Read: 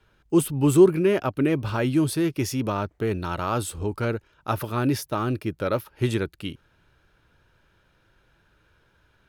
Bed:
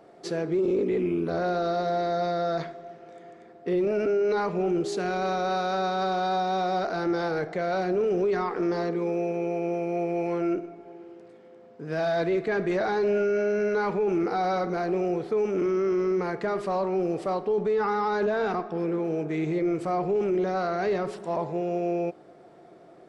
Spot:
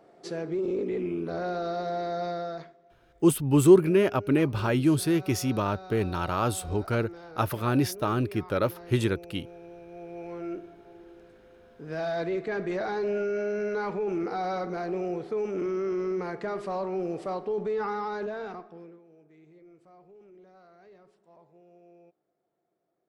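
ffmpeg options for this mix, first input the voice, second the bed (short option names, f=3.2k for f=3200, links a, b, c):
-filter_complex "[0:a]adelay=2900,volume=-1dB[a];[1:a]volume=9dB,afade=t=out:st=2.31:d=0.46:silence=0.211349,afade=t=in:st=9.87:d=1.26:silence=0.211349,afade=t=out:st=17.83:d=1.18:silence=0.0630957[b];[a][b]amix=inputs=2:normalize=0"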